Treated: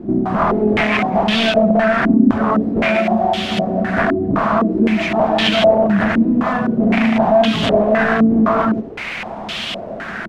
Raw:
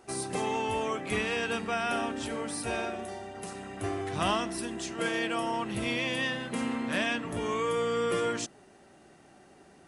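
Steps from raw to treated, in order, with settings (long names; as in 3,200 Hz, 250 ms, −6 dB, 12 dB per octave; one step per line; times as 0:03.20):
reverb reduction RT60 0.88 s
single-tap delay 87 ms −14.5 dB
in parallel at −3 dB: downward compressor 12 to 1, threshold −41 dBFS, peak gain reduction 16.5 dB
on the sum: low-shelf EQ 82 Hz +7 dB
wrap-around overflow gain 26 dB
wrong playback speed 25 fps video run at 24 fps
hollow resonant body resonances 210/660 Hz, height 17 dB, ringing for 85 ms
bit-depth reduction 6 bits, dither triangular
boost into a limiter +18.5 dB
low-pass on a step sequencer 3.9 Hz 300–3,200 Hz
level −7 dB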